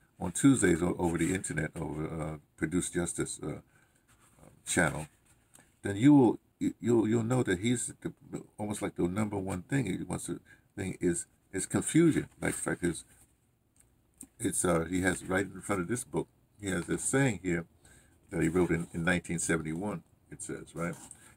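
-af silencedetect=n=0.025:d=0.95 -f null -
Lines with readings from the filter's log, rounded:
silence_start: 3.54
silence_end: 4.68 | silence_duration: 1.14
silence_start: 12.98
silence_end: 14.21 | silence_duration: 1.23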